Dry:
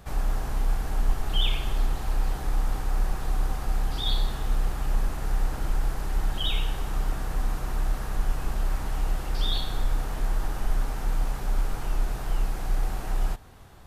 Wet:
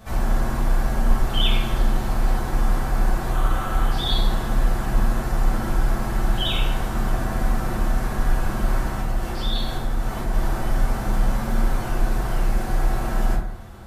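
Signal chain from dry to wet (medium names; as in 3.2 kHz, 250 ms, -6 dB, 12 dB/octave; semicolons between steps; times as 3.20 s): 3.31–3.90 s: graphic EQ with 31 bands 200 Hz -10 dB, 1.25 kHz +9 dB, 3.15 kHz +7 dB, 5 kHz -7 dB; 8.81–10.33 s: compression, threshold -24 dBFS, peak gain reduction 6 dB; reverberation RT60 0.80 s, pre-delay 5 ms, DRR -7 dB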